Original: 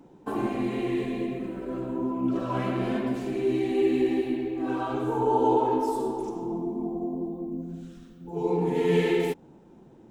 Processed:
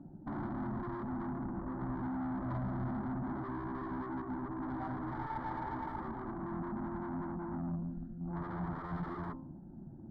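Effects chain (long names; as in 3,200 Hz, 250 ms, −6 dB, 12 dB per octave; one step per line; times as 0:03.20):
adaptive Wiener filter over 41 samples
hum removal 65.43 Hz, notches 16
0:01.81–0:04.22: low-shelf EQ 500 Hz +6 dB
downward compressor 4 to 1, threshold −28 dBFS, peak gain reduction 10 dB
tube saturation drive 41 dB, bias 0.35
high-frequency loss of the air 480 metres
phaser with its sweep stopped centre 1,100 Hz, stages 4
level +10 dB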